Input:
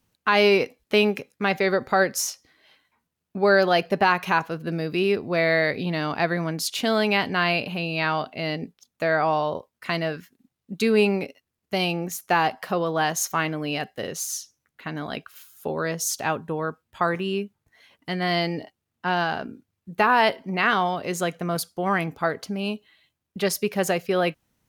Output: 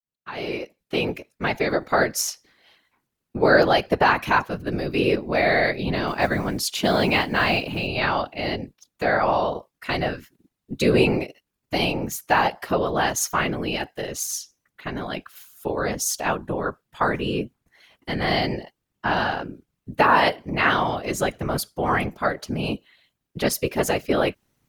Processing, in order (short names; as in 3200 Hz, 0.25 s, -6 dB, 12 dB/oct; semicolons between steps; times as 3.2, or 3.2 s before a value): opening faded in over 2.15 s; 6.07–7.87 modulation noise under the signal 31 dB; whisperiser; gain +1.5 dB